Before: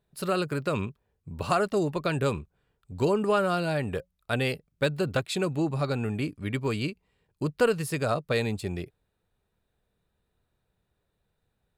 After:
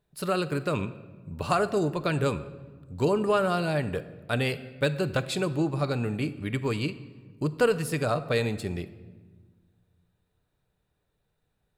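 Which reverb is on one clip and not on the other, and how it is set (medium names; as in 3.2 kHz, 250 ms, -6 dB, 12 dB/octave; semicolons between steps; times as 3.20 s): simulated room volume 1100 m³, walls mixed, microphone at 0.42 m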